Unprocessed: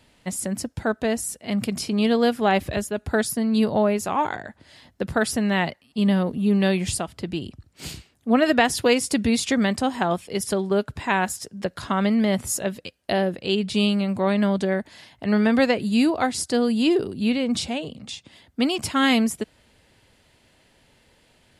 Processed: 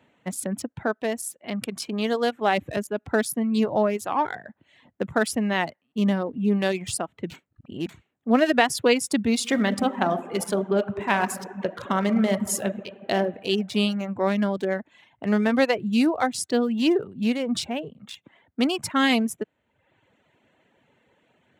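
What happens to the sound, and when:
0.87–2.58 s: bass shelf 280 Hz -7 dB
7.30–7.89 s: reverse
9.33–13.16 s: reverb throw, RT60 1.7 s, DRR 4 dB
whole clip: local Wiener filter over 9 samples; reverb removal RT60 0.81 s; high-pass 150 Hz 12 dB/octave

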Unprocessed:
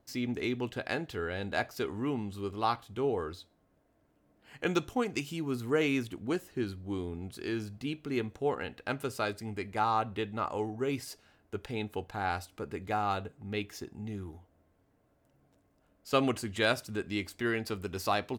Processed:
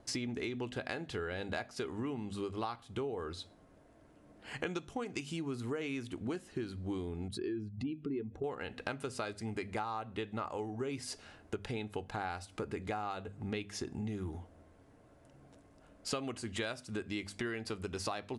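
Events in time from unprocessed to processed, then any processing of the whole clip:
7.28–8.44 s: spectral contrast enhancement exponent 1.7
whole clip: steep low-pass 11 kHz 96 dB/octave; hum notches 50/100/150/200/250 Hz; compression 12:1, threshold -44 dBFS; trim +9 dB

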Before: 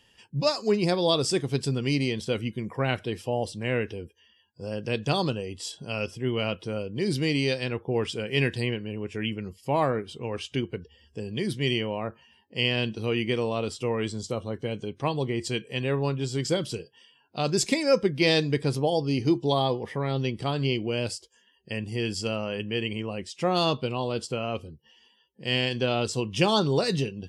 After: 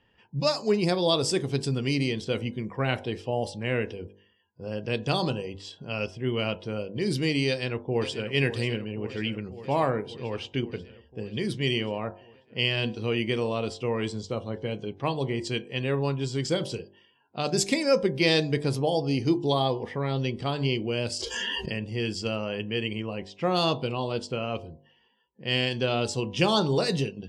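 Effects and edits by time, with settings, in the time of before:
7.47–8.27 s: echo throw 540 ms, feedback 75%, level -11.5 dB
21.12–21.74 s: level flattener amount 100%
whole clip: level-controlled noise filter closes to 1.8 kHz, open at -22 dBFS; de-hum 49.2 Hz, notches 21

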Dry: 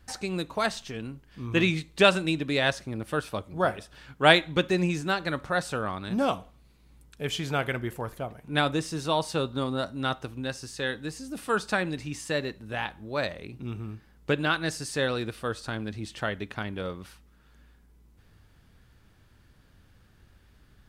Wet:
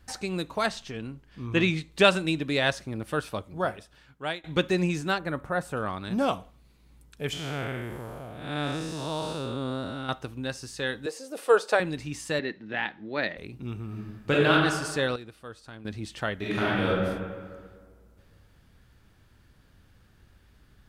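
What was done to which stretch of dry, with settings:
0.68–1.92 s: treble shelf 9.9 kHz -9 dB
3.29–4.44 s: fade out, to -22 dB
5.18–5.77 s: peaking EQ 4.5 kHz -13.5 dB 1.7 oct
7.33–10.09 s: spectral blur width 245 ms
11.06–11.80 s: resonant high-pass 490 Hz, resonance Q 4.1
12.39–13.37 s: cabinet simulation 180–4600 Hz, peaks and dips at 210 Hz +4 dB, 320 Hz +5 dB, 560 Hz -3 dB, 1.1 kHz -5 dB, 1.9 kHz +8 dB
13.87–14.52 s: reverb throw, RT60 1.3 s, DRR -4.5 dB
15.16–15.85 s: gain -11.5 dB
16.36–16.87 s: reverb throw, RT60 1.8 s, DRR -9.5 dB

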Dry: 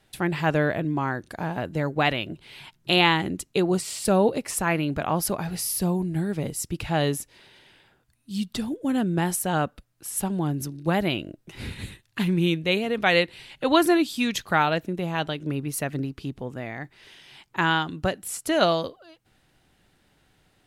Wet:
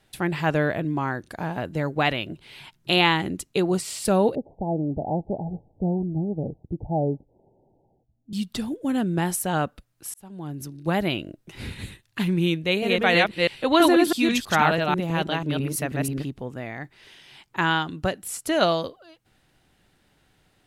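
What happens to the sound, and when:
4.35–8.33 s: steep low-pass 850 Hz 96 dB/octave
10.14–10.97 s: fade in
12.66–16.25 s: chunks repeated in reverse 163 ms, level -1 dB

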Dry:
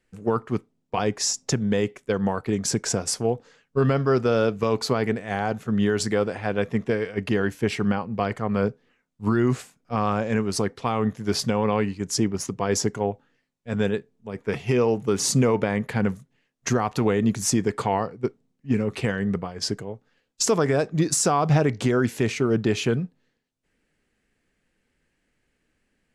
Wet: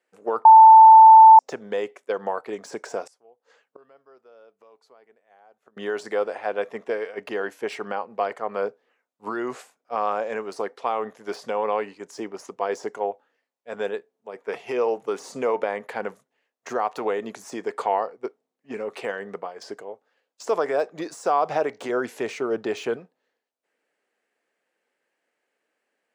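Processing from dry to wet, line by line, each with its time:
0.45–1.39 s: bleep 886 Hz -6.5 dBFS
3.05–5.77 s: inverted gate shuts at -26 dBFS, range -29 dB
21.89–22.97 s: bass shelf 180 Hz +9 dB
whole clip: de-esser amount 75%; high-pass 490 Hz 12 dB/octave; peaking EQ 630 Hz +9.5 dB 2.3 oct; trim -6 dB

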